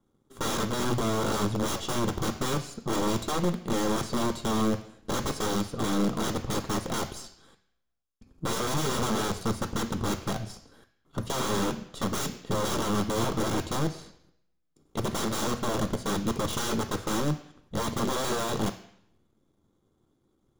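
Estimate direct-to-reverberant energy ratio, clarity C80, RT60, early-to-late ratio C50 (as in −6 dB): 8.0 dB, 16.5 dB, 0.70 s, 13.5 dB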